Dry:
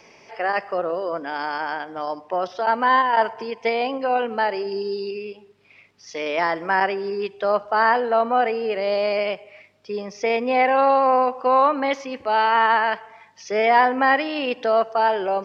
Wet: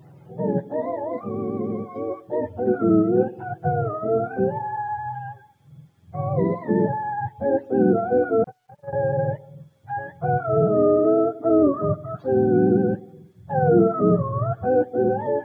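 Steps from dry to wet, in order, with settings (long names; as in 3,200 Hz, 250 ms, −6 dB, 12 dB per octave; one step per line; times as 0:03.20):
frequency axis turned over on the octave scale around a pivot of 580 Hz
0:08.44–0:08.93: noise gate −20 dBFS, range −48 dB
bit reduction 12 bits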